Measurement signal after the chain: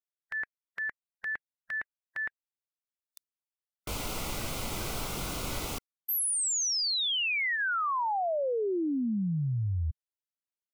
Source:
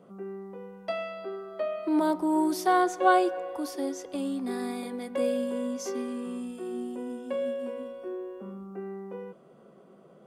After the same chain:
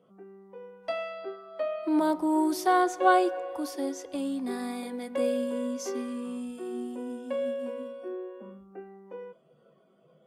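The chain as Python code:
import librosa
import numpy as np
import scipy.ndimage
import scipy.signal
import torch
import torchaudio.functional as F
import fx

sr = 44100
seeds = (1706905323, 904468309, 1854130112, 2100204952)

y = fx.noise_reduce_blind(x, sr, reduce_db=11)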